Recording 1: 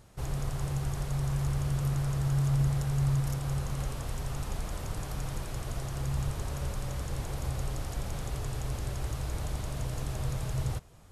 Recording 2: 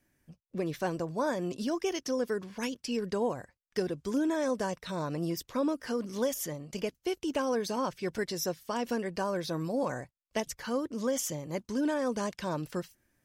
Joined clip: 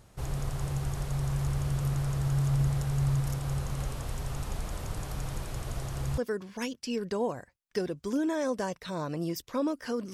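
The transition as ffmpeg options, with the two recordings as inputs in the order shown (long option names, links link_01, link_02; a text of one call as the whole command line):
ffmpeg -i cue0.wav -i cue1.wav -filter_complex "[0:a]apad=whole_dur=10.13,atrim=end=10.13,atrim=end=6.182[link_01];[1:a]atrim=start=2.188:end=6.14[link_02];[link_01][link_02]acrossfade=duration=0.004:curve1=hsin:curve2=hsin" out.wav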